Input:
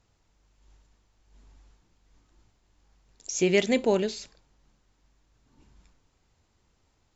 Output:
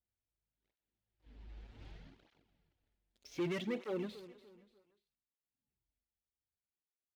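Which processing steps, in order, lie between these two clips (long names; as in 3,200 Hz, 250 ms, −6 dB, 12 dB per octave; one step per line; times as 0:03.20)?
source passing by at 0:01.88, 19 m/s, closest 1.6 metres
low-pass filter 3,800 Hz 24 dB per octave
parametric band 1,100 Hz −11.5 dB 0.46 octaves
leveller curve on the samples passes 3
repeating echo 293 ms, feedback 38%, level −15.5 dB
through-zero flanger with one copy inverted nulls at 0.65 Hz, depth 7.9 ms
level +8 dB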